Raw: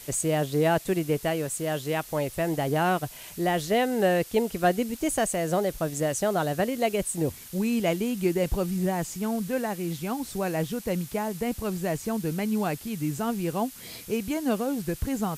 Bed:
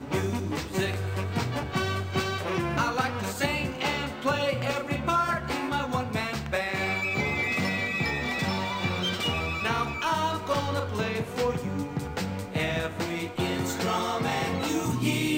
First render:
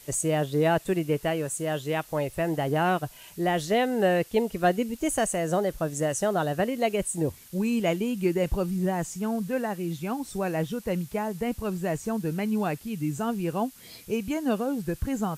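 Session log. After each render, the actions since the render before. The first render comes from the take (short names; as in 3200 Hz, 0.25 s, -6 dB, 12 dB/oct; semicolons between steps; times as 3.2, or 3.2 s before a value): noise print and reduce 6 dB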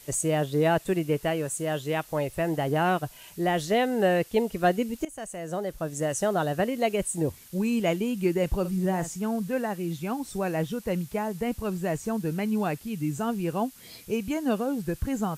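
5.05–6.23 fade in, from -18.5 dB; 8.6–9.16 doubler 48 ms -11.5 dB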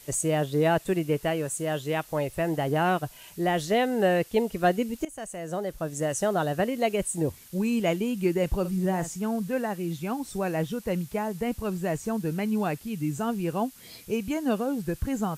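nothing audible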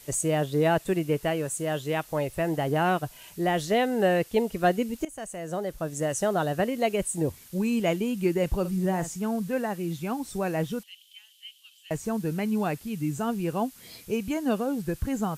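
10.83–11.91 ladder high-pass 3000 Hz, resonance 90%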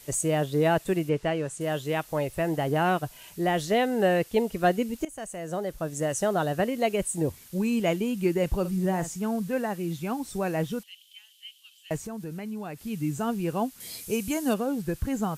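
1.09–1.61 air absorption 63 m; 12.05–12.84 compressor 2.5:1, threshold -36 dBFS; 13.8–14.54 bell 10000 Hz +11 dB 1.8 oct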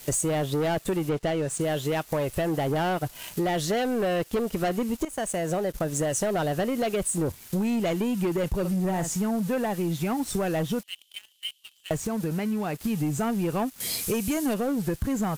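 sample leveller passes 3; compressor 5:1, threshold -25 dBFS, peak gain reduction 10 dB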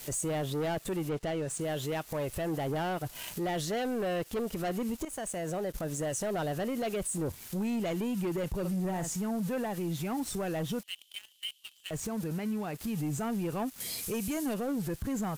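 compressor 2:1, threshold -30 dBFS, peak gain reduction 4.5 dB; limiter -27.5 dBFS, peak gain reduction 11 dB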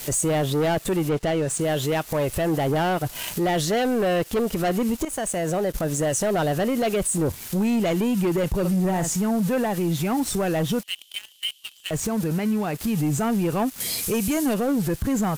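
gain +10 dB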